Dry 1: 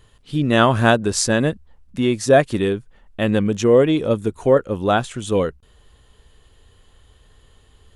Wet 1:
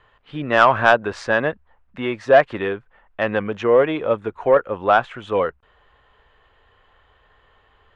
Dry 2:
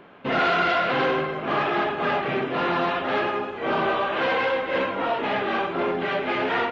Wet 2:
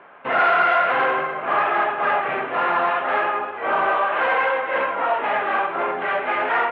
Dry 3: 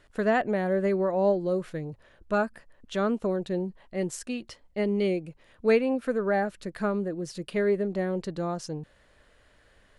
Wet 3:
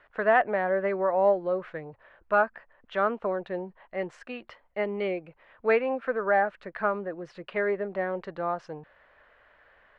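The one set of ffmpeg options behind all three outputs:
-filter_complex "[0:a]lowpass=4500,acrossover=split=580 2400:gain=0.141 1 0.0794[s0][s1][s2];[s0][s1][s2]amix=inputs=3:normalize=0,acontrast=77"

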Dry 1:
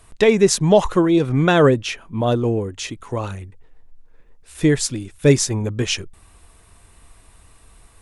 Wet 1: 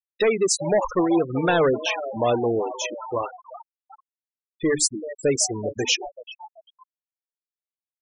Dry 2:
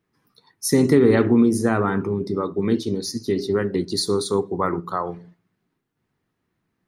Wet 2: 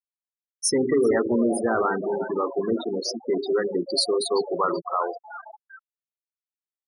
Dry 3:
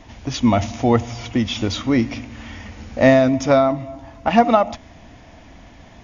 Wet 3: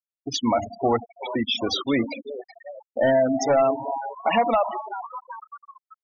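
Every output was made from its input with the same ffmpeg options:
-filter_complex "[0:a]aresample=22050,aresample=44100,alimiter=limit=0.447:level=0:latency=1:release=292,acrusher=bits=6:mix=0:aa=0.000001,bass=f=250:g=-14,treble=f=4000:g=-3,asoftclip=type=tanh:threshold=0.158,highshelf=f=6000:g=8,bandreject=f=50:t=h:w=6,bandreject=f=100:t=h:w=6,bandreject=f=150:t=h:w=6,bandreject=f=200:t=h:w=6,bandreject=f=250:t=h:w=6,bandreject=f=300:t=h:w=6,asplit=9[s0][s1][s2][s3][s4][s5][s6][s7][s8];[s1]adelay=383,afreqshift=150,volume=0.266[s9];[s2]adelay=766,afreqshift=300,volume=0.168[s10];[s3]adelay=1149,afreqshift=450,volume=0.106[s11];[s4]adelay=1532,afreqshift=600,volume=0.0668[s12];[s5]adelay=1915,afreqshift=750,volume=0.0417[s13];[s6]adelay=2298,afreqshift=900,volume=0.0263[s14];[s7]adelay=2681,afreqshift=1050,volume=0.0166[s15];[s8]adelay=3064,afreqshift=1200,volume=0.0105[s16];[s0][s9][s10][s11][s12][s13][s14][s15][s16]amix=inputs=9:normalize=0,afftfilt=real='re*gte(hypot(re,im),0.0794)':imag='im*gte(hypot(re,im),0.0794)':win_size=1024:overlap=0.75,volume=1.33"

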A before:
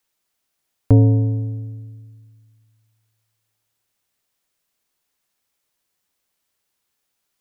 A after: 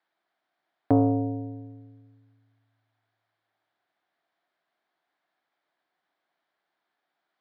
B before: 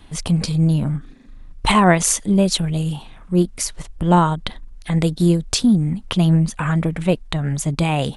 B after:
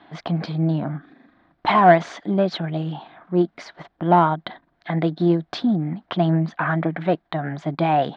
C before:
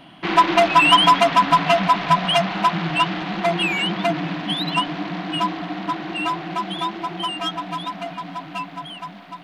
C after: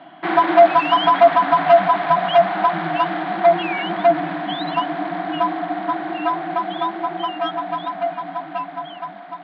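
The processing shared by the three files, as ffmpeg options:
-filter_complex "[0:a]asplit=2[s0][s1];[s1]highpass=f=720:p=1,volume=5.62,asoftclip=type=tanh:threshold=0.891[s2];[s0][s2]amix=inputs=2:normalize=0,lowpass=f=2100:p=1,volume=0.501,highpass=140,equalizer=f=160:t=q:w=4:g=4,equalizer=f=320:t=q:w=4:g=7,equalizer=f=480:t=q:w=4:g=-4,equalizer=f=700:t=q:w=4:g=10,equalizer=f=1600:t=q:w=4:g=4,equalizer=f=2700:t=q:w=4:g=-8,lowpass=f=3900:w=0.5412,lowpass=f=3900:w=1.3066,volume=0.473"

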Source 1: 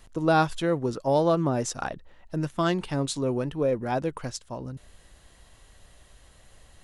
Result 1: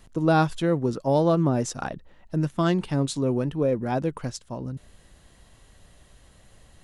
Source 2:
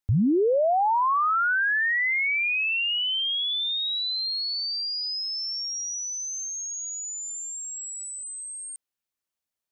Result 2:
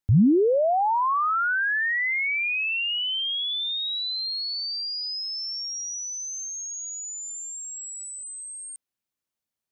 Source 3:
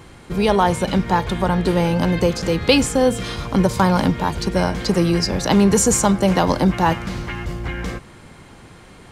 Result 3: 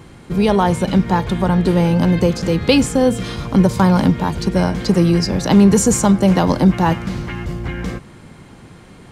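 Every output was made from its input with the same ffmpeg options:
-af "equalizer=f=180:t=o:w=2.1:g=6,volume=0.891"

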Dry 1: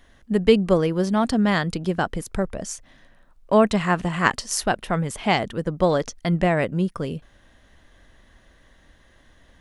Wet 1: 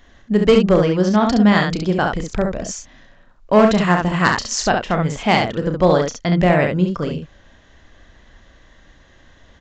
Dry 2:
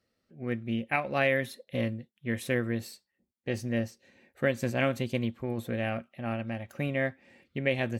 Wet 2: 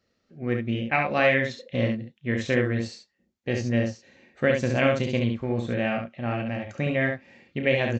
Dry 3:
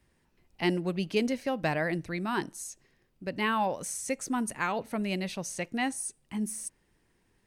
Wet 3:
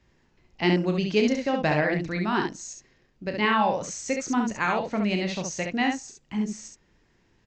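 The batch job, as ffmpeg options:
-af "aresample=16000,asoftclip=type=hard:threshold=0.316,aresample=44100,aecho=1:1:33|68:0.376|0.596,volume=1.58"

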